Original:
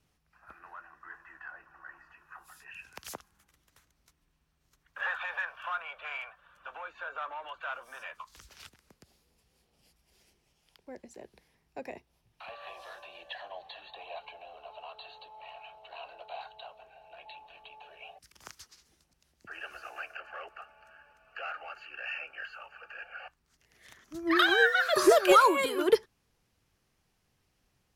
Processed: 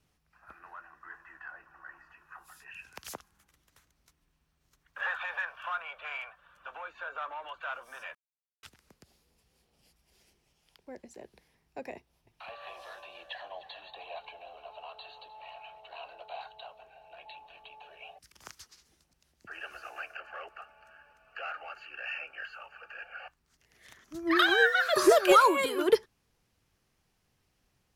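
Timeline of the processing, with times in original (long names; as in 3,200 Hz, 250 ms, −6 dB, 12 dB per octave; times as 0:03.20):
0:08.15–0:08.63: silence
0:11.96–0:15.81: single-tap delay 306 ms −16.5 dB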